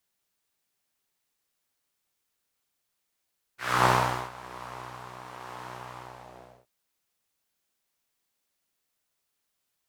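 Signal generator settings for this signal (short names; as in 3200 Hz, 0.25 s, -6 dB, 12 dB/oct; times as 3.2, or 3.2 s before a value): synth patch with tremolo B2, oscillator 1 triangle, interval -12 st, detune 15 cents, oscillator 2 level -1 dB, noise -2.5 dB, filter bandpass, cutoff 590 Hz, Q 2.5, filter envelope 1.5 oct, filter sustain 50%, attack 0.282 s, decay 0.43 s, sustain -20.5 dB, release 0.69 s, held 2.39 s, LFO 1.1 Hz, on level 3 dB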